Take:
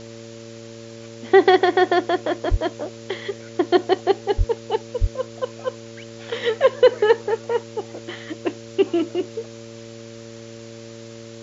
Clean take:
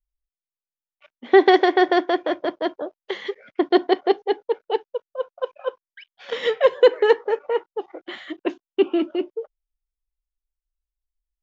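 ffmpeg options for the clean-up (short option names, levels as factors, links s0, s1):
-filter_complex "[0:a]bandreject=f=114.2:t=h:w=4,bandreject=f=228.4:t=h:w=4,bandreject=f=342.6:t=h:w=4,bandreject=f=456.8:t=h:w=4,bandreject=f=571:t=h:w=4,asplit=3[s0][s1][s2];[s0]afade=t=out:st=2.5:d=0.02[s3];[s1]highpass=f=140:w=0.5412,highpass=f=140:w=1.3066,afade=t=in:st=2.5:d=0.02,afade=t=out:st=2.62:d=0.02[s4];[s2]afade=t=in:st=2.62:d=0.02[s5];[s3][s4][s5]amix=inputs=3:normalize=0,asplit=3[s6][s7][s8];[s6]afade=t=out:st=4.37:d=0.02[s9];[s7]highpass=f=140:w=0.5412,highpass=f=140:w=1.3066,afade=t=in:st=4.37:d=0.02,afade=t=out:st=4.49:d=0.02[s10];[s8]afade=t=in:st=4.49:d=0.02[s11];[s9][s10][s11]amix=inputs=3:normalize=0,asplit=3[s12][s13][s14];[s12]afade=t=out:st=5:d=0.02[s15];[s13]highpass=f=140:w=0.5412,highpass=f=140:w=1.3066,afade=t=in:st=5:d=0.02,afade=t=out:st=5.12:d=0.02[s16];[s14]afade=t=in:st=5.12:d=0.02[s17];[s15][s16][s17]amix=inputs=3:normalize=0,afwtdn=0.0071"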